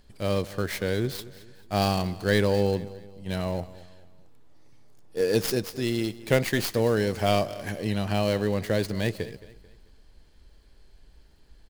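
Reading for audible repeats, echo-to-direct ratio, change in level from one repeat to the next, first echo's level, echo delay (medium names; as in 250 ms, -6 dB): 3, -17.5 dB, -8.0 dB, -18.0 dB, 220 ms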